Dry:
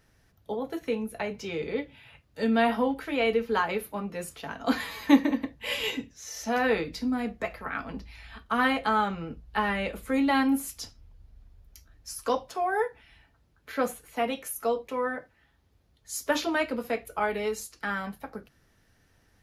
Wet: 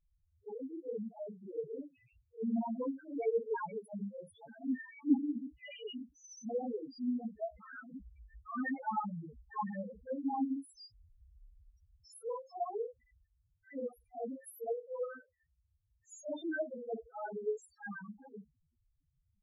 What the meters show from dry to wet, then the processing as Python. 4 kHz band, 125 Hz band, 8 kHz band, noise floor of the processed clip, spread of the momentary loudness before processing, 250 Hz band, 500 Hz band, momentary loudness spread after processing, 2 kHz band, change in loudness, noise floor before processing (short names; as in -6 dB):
-20.5 dB, -9.0 dB, -17.5 dB, -79 dBFS, 14 LU, -9.0 dB, -9.5 dB, 16 LU, -17.0 dB, -10.5 dB, -66 dBFS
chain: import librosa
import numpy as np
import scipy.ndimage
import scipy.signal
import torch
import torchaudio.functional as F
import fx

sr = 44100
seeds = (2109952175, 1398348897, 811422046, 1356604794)

y = fx.phase_scramble(x, sr, seeds[0], window_ms=100)
y = fx.spec_topn(y, sr, count=2)
y = F.gain(torch.from_numpy(y), -6.0).numpy()